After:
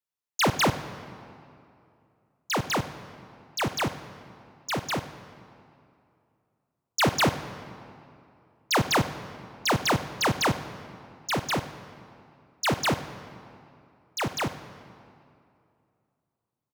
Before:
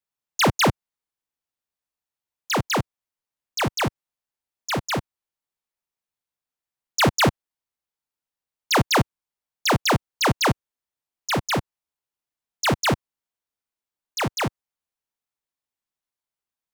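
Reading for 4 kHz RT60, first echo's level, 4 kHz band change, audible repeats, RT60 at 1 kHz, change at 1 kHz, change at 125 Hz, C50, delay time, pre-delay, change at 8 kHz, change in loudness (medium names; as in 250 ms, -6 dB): 1.7 s, -19.0 dB, -3.5 dB, 1, 2.5 s, -3.5 dB, -5.0 dB, 11.5 dB, 96 ms, 35 ms, -4.0 dB, -4.0 dB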